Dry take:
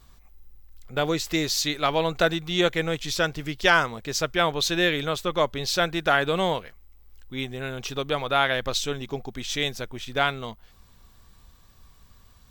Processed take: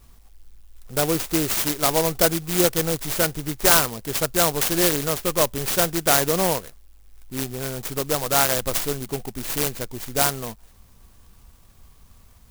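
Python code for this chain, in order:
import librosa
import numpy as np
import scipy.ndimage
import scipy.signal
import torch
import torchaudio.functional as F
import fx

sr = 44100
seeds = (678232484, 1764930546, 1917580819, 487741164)

y = fx.clock_jitter(x, sr, seeds[0], jitter_ms=0.14)
y = y * 10.0 ** (3.0 / 20.0)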